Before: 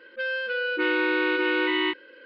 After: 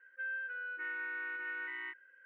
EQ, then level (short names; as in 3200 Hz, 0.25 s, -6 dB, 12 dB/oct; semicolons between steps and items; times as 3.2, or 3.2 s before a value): band-pass 1700 Hz, Q 9.6; air absorption 430 m; 0.0 dB